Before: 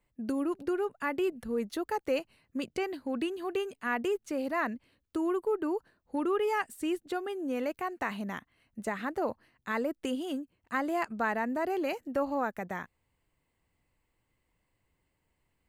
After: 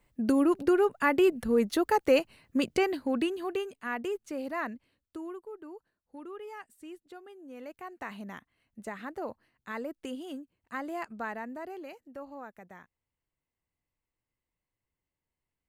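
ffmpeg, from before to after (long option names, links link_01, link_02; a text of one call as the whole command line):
ffmpeg -i in.wav -af "volume=15.5dB,afade=type=out:start_time=2.71:duration=1.03:silence=0.316228,afade=type=out:start_time=4.63:duration=0.83:silence=0.281838,afade=type=in:start_time=7.48:duration=0.7:silence=0.375837,afade=type=out:start_time=11.17:duration=0.76:silence=0.421697" out.wav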